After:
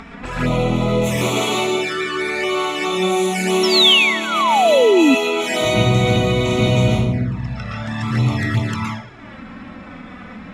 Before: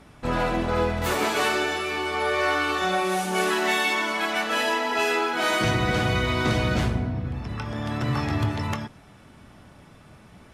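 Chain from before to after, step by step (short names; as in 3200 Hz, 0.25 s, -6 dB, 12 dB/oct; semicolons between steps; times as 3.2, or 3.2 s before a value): low-pass opened by the level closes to 2500 Hz, open at -21 dBFS; reverb RT60 0.45 s, pre-delay 0.111 s, DRR -5 dB; painted sound fall, 3.63–5.15, 250–5600 Hz -15 dBFS; envelope flanger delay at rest 4.5 ms, full sweep at -16.5 dBFS; upward compressor, threshold -27 dBFS; gain +3.5 dB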